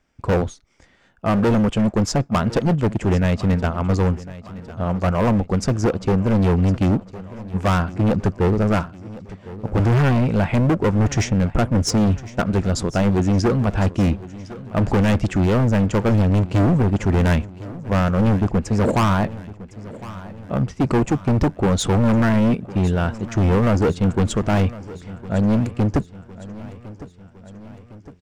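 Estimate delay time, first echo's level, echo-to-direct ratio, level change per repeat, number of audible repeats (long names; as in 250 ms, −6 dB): 1,058 ms, −17.5 dB, −16.0 dB, −5.0 dB, 4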